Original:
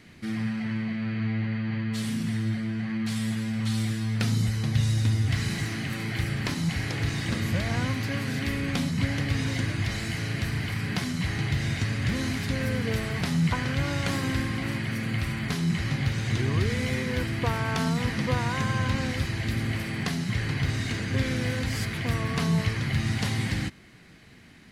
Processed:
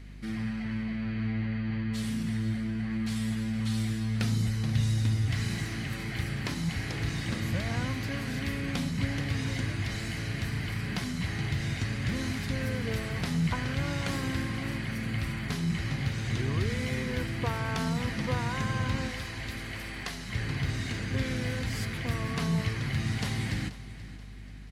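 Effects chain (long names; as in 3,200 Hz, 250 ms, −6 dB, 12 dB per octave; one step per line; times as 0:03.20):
0:19.08–0:20.33: parametric band 140 Hz −12 dB 2.3 octaves
mains hum 50 Hz, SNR 14 dB
on a send: repeating echo 482 ms, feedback 43%, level −16 dB
on the sum: level −4 dB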